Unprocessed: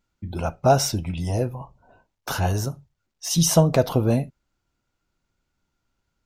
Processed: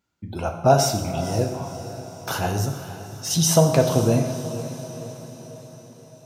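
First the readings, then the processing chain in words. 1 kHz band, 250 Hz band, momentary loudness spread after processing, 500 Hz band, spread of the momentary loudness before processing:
+2.0 dB, +0.5 dB, 19 LU, +2.0 dB, 16 LU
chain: HPF 89 Hz; on a send: diffused feedback echo 0.503 s, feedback 54%, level -12.5 dB; on the sum: plate-style reverb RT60 1.1 s, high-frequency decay 0.85×, DRR 4.5 dB

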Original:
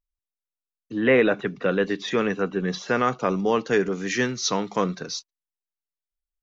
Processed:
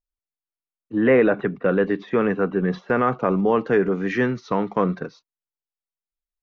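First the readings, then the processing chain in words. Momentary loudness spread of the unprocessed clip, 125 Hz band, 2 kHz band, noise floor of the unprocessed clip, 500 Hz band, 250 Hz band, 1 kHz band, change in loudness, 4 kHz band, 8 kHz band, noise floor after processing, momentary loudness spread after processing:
8 LU, +4.0 dB, -0.5 dB, under -85 dBFS, +3.0 dB, +4.0 dB, +2.0 dB, +2.5 dB, -12.5 dB, n/a, under -85 dBFS, 7 LU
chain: LPF 1700 Hz 12 dB/oct; gate -34 dBFS, range -9 dB; in parallel at -1.5 dB: limiter -19 dBFS, peak gain reduction 9.5 dB

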